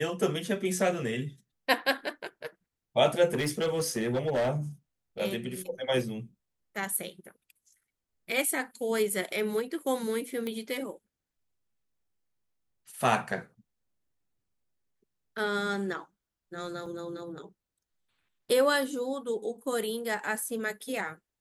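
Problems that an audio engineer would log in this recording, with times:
0:03.33–0:04.50: clipping −24 dBFS
0:10.47: click −22 dBFS
0:16.86: drop-out 4 ms

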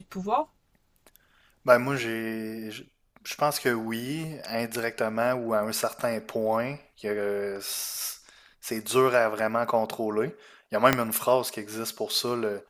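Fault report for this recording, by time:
0:10.93: click −5 dBFS

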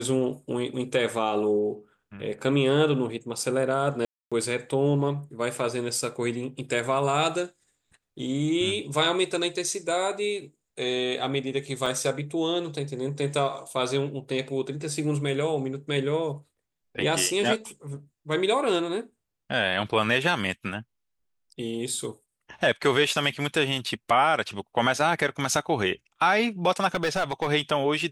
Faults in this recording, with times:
0:04.05–0:04.32: drop-out 266 ms
0:11.86: drop-out 4.5 ms
0:26.94–0:27.49: clipping −20 dBFS

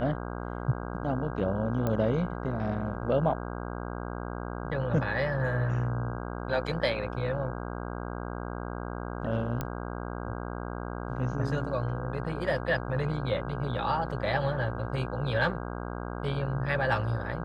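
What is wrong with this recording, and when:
mains buzz 60 Hz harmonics 27 −36 dBFS
0:01.87: click −17 dBFS
0:09.61: click −17 dBFS

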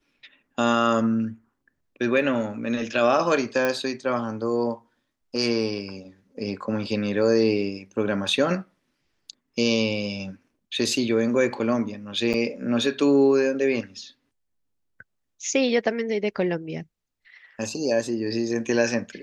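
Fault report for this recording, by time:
0:03.65: click −11 dBFS
0:12.33–0:12.34: drop-out 7.9 ms

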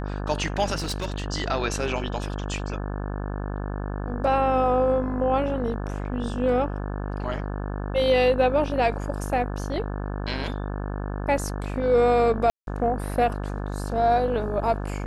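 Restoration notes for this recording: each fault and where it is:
mains buzz 50 Hz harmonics 35 −30 dBFS
0:00.75–0:01.26: clipping −24 dBFS
0:12.50–0:12.67: drop-out 172 ms

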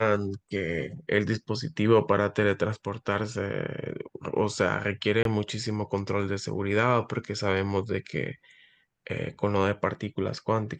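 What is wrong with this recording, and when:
0:05.23–0:05.25: drop-out 22 ms

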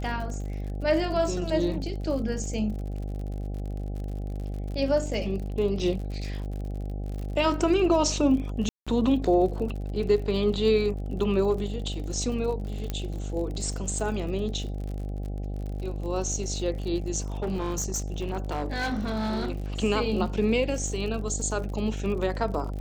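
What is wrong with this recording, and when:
mains buzz 50 Hz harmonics 16 −32 dBFS
surface crackle 52 per second −35 dBFS
0:08.69–0:08.87: drop-out 176 ms
0:12.90: click −16 dBFS
0:17.42–0:19.60: clipping −24.5 dBFS

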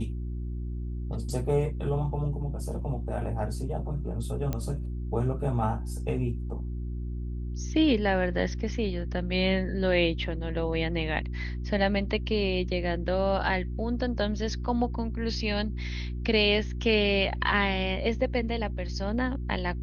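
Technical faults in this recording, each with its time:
mains hum 60 Hz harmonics 6 −33 dBFS
0:04.53: click −17 dBFS

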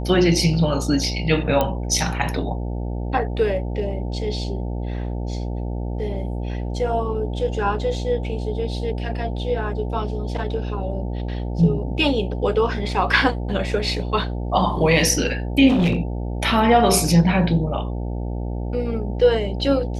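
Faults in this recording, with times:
mains buzz 60 Hz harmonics 15 −26 dBFS
0:01.61: click −7 dBFS
0:15.68–0:16.01: clipping −14.5 dBFS

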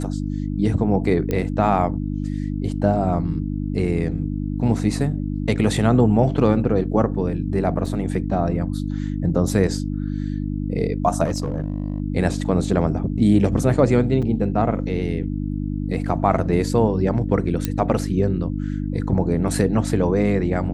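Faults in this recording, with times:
mains hum 50 Hz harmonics 6 −25 dBFS
0:01.31: click −11 dBFS
0:07.86: drop-out 3.5 ms
0:11.24–0:12.00: clipping −18.5 dBFS
0:14.22–0:14.23: drop-out 5.5 ms
0:17.65: click −8 dBFS

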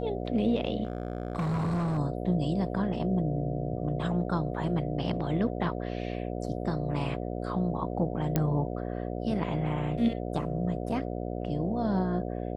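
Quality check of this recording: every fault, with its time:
mains buzz 60 Hz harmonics 12 −34 dBFS
0:00.83–0:01.99: clipping −26 dBFS
0:08.36: click −12 dBFS

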